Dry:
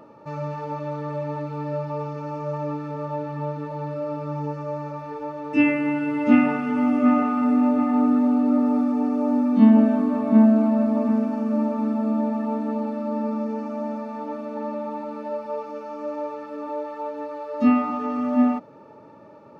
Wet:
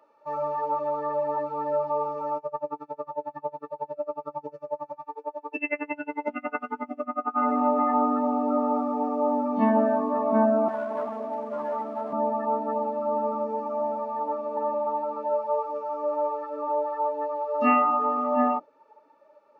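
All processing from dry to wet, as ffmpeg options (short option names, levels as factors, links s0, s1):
-filter_complex "[0:a]asettb=1/sr,asplit=3[s0][s1][s2];[s0]atrim=end=2.374[s3];[s1]atrim=start=2.37:end=7.37,asetpts=PTS-STARTPTS,afade=t=in:d=0.004:c=qsin,afade=t=out:st=4.996:d=0.004:c=qsin,acompressor=threshold=0.1:ratio=5:attack=3.2:release=140:knee=1:detection=peak,aeval=exprs='val(0)*pow(10,-25*(0.5-0.5*cos(2*PI*11*n/s))/20)':c=same[s4];[s2]atrim=start=7.366[s5];[s3][s4]acrossfade=d=0.004:c1=hsin:c2=qsin[s6];[s6][s5]acrossfade=d=0.004:c1=qsin:c2=hsin,asettb=1/sr,asplit=3[s7][s8][s9];[s7]atrim=end=10.684[s10];[s8]atrim=start=10.68:end=12.13,asetpts=PTS-STARTPTS,afade=t=in:d=0.004:c=qsin,afade=t=out:st=1.446:d=0.004:c=qsin,highpass=290,asoftclip=type=hard:threshold=0.0422[s11];[s9]atrim=start=12.126[s12];[s10][s11]acrossfade=d=0.004:c1=hsin:c2=qsin[s13];[s13][s12]acrossfade=d=0.004:c1=qsin:c2=hsin,afftdn=nr=18:nf=-31,highpass=620,volume=2.24"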